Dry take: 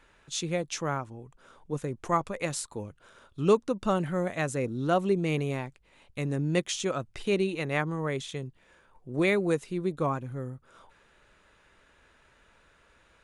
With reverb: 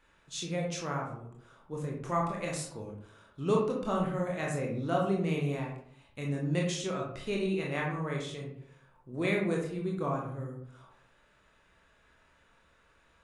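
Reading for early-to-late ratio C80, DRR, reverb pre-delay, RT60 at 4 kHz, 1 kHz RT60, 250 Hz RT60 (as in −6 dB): 7.5 dB, −2.0 dB, 20 ms, 0.35 s, 0.60 s, 0.75 s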